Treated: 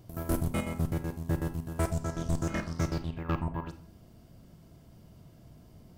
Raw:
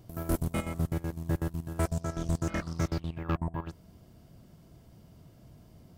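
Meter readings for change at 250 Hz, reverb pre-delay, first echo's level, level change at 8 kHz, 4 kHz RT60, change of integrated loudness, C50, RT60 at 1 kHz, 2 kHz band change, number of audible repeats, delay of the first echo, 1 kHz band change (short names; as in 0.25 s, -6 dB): +0.5 dB, 29 ms, none, +0.5 dB, 0.35 s, 0.0 dB, 13.0 dB, 0.50 s, +0.5 dB, none, none, +0.5 dB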